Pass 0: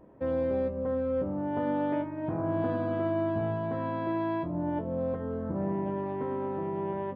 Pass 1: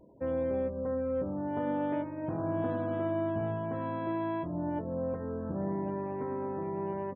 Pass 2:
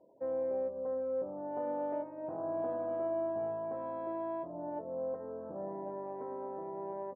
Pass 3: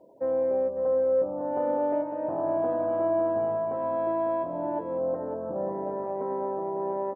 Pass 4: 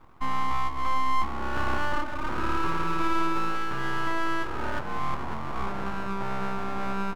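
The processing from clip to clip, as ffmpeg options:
-af "aecho=1:1:1158:0.075,afftfilt=real='re*gte(hypot(re,im),0.00251)':imag='im*gte(hypot(re,im),0.00251)':win_size=1024:overlap=0.75,volume=-2.5dB"
-af "bandpass=f=650:t=q:w=1.7:csg=0"
-af "aecho=1:1:551:0.398,volume=8.5dB"
-af "aeval=exprs='abs(val(0))':c=same,volume=3dB"

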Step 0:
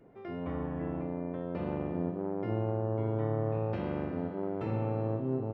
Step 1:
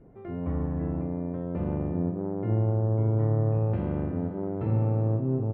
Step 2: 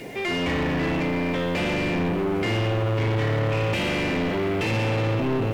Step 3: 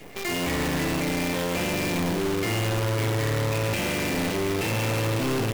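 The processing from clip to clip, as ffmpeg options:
-af "lowpass=f=2.2k:p=1,aemphasis=mode=reproduction:type=bsi"
-filter_complex "[0:a]aexciter=amount=12.4:drive=8.8:freq=2.1k,asplit=2[a][b];[b]highpass=f=720:p=1,volume=34dB,asoftclip=type=tanh:threshold=-13dB[c];[a][c]amix=inputs=2:normalize=0,lowpass=f=2k:p=1,volume=-6dB,volume=-3dB"
-af "acrusher=bits=5:dc=4:mix=0:aa=0.000001,volume=-3.5dB"

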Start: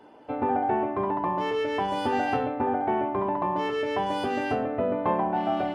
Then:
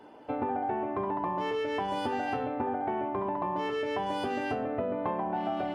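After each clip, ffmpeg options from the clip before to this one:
-af "acompressor=threshold=-28dB:ratio=6"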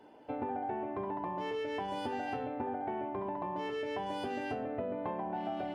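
-af "equalizer=f=1.2k:w=3.7:g=-5.5,volume=-5dB"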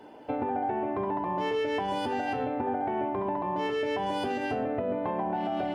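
-af "alimiter=level_in=5dB:limit=-24dB:level=0:latency=1:release=77,volume=-5dB,volume=8dB"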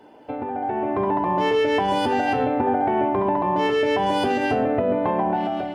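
-af "dynaudnorm=f=530:g=3:m=9dB"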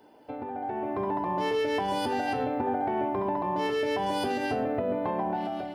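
-af "aexciter=amount=1.8:drive=5.5:freq=4k,volume=-7.5dB"

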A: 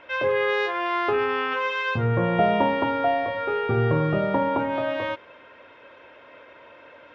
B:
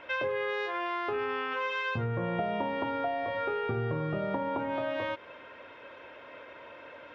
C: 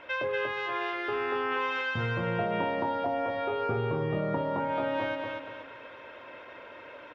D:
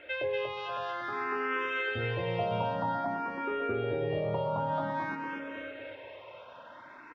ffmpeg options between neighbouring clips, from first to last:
-af "acompressor=threshold=-29dB:ratio=6"
-af "aecho=1:1:238|476|714|952|1190:0.668|0.261|0.102|0.0396|0.0155"
-filter_complex "[0:a]aecho=1:1:555:0.398,asplit=2[a][b];[b]afreqshift=0.52[c];[a][c]amix=inputs=2:normalize=1"

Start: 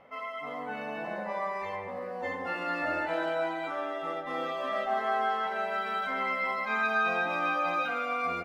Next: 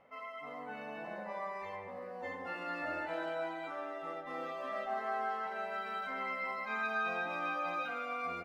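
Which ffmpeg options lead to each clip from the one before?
-af "bandreject=f=3.3k:w=26,volume=-7.5dB"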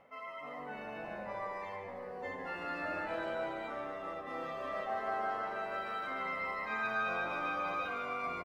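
-filter_complex "[0:a]areverse,acompressor=mode=upward:threshold=-45dB:ratio=2.5,areverse,asplit=6[a][b][c][d][e][f];[b]adelay=147,afreqshift=-98,volume=-10dB[g];[c]adelay=294,afreqshift=-196,volume=-16dB[h];[d]adelay=441,afreqshift=-294,volume=-22dB[i];[e]adelay=588,afreqshift=-392,volume=-28.1dB[j];[f]adelay=735,afreqshift=-490,volume=-34.1dB[k];[a][g][h][i][j][k]amix=inputs=6:normalize=0"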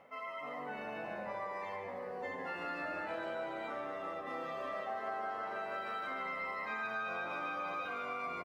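-af "acompressor=threshold=-40dB:ratio=3,highpass=f=120:p=1,volume=2.5dB"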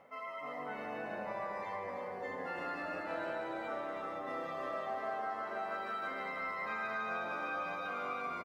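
-filter_complex "[0:a]equalizer=f=2.8k:t=o:w=0.65:g=-3.5,asplit=2[a][b];[b]aecho=0:1:323:0.531[c];[a][c]amix=inputs=2:normalize=0"

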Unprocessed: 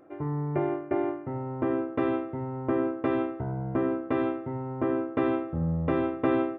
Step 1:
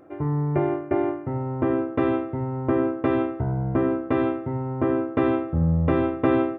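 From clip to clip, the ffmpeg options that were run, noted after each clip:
-af "equalizer=f=65:w=0.74:g=7.5,volume=4dB"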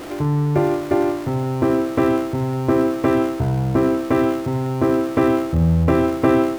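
-af "aeval=exprs='val(0)+0.5*0.0237*sgn(val(0))':c=same,volume=4dB"

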